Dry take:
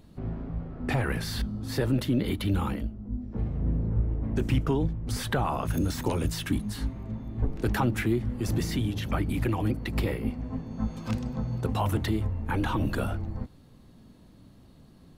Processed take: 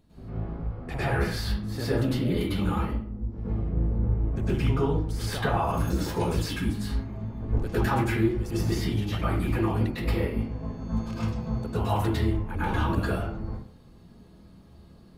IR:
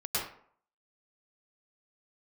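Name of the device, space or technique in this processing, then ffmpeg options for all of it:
bathroom: -filter_complex "[1:a]atrim=start_sample=2205[a];[0:a][a]afir=irnorm=-1:irlink=0,volume=-5dB"

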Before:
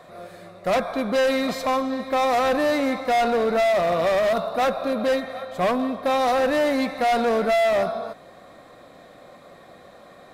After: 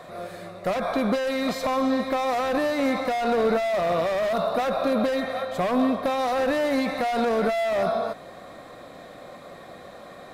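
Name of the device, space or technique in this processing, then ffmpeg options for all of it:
de-esser from a sidechain: -filter_complex "[0:a]asplit=2[a][b];[b]highpass=f=6.9k:p=1,apad=whole_len=455870[c];[a][c]sidechaincompress=threshold=-39dB:ratio=6:attack=0.68:release=62,volume=4dB"

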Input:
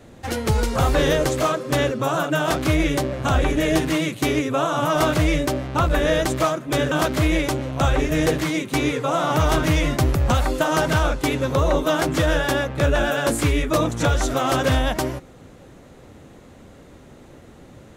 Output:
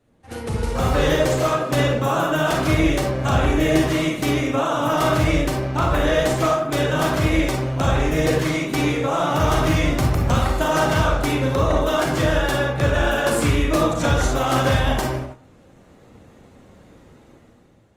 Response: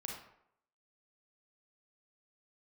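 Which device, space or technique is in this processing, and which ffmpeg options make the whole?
speakerphone in a meeting room: -filter_complex "[1:a]atrim=start_sample=2205[a];[0:a][a]afir=irnorm=-1:irlink=0,dynaudnorm=f=160:g=9:m=11.5dB,agate=range=-8dB:threshold=-29dB:ratio=16:detection=peak,volume=-5dB" -ar 48000 -c:a libopus -b:a 32k

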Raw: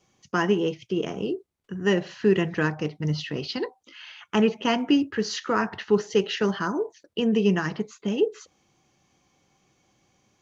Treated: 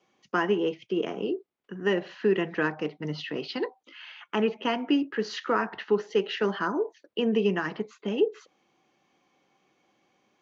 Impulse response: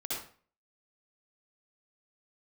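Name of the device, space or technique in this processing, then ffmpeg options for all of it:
DJ mixer with the lows and highs turned down: -filter_complex "[0:a]acrossover=split=200 4000:gain=0.0891 1 0.178[a][b][c];[a][b][c]amix=inputs=3:normalize=0,alimiter=limit=-14dB:level=0:latency=1:release=460"

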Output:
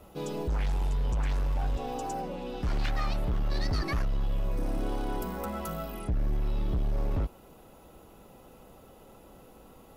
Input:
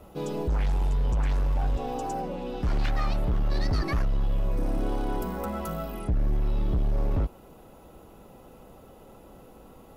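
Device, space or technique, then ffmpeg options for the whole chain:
behind a face mask: -af "highshelf=f=2.3k:g=11.5,highshelf=f=3k:g=-7.5,volume=-3.5dB"

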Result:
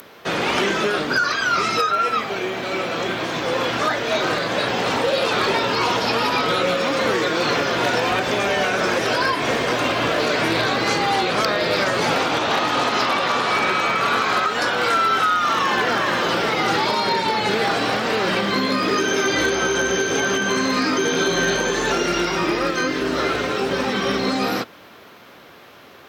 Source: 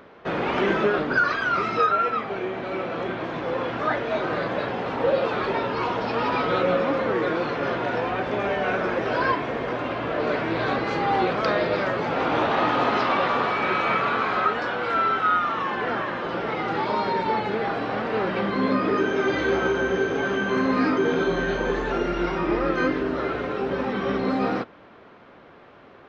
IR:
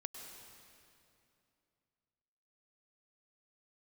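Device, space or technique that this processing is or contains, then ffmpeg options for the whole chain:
FM broadcast chain: -filter_complex "[0:a]highpass=f=56:w=0.5412,highpass=f=56:w=1.3066,dynaudnorm=f=630:g=17:m=11.5dB,acrossover=split=1800|3700[a][b][c];[a]acompressor=threshold=-18dB:ratio=4[d];[b]acompressor=threshold=-34dB:ratio=4[e];[c]acompressor=threshold=-44dB:ratio=4[f];[d][e][f]amix=inputs=3:normalize=0,aemphasis=mode=production:type=75fm,alimiter=limit=-14dB:level=0:latency=1:release=362,asoftclip=type=hard:threshold=-15dB,lowpass=f=15k:w=0.5412,lowpass=f=15k:w=1.3066,aemphasis=mode=production:type=75fm,volume=3.5dB"

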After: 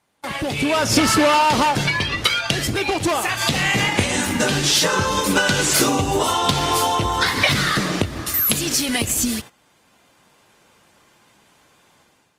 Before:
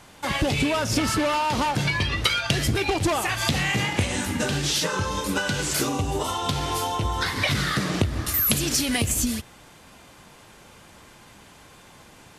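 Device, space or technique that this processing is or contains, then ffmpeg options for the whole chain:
video call: -af "highpass=f=170:p=1,dynaudnorm=f=480:g=3:m=11.5dB,agate=range=-16dB:threshold=-33dB:ratio=16:detection=peak,volume=-1dB" -ar 48000 -c:a libopus -b:a 32k

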